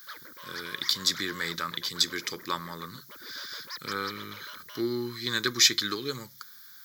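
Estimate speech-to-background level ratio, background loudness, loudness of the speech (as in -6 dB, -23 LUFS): 15.5 dB, -44.0 LUFS, -28.5 LUFS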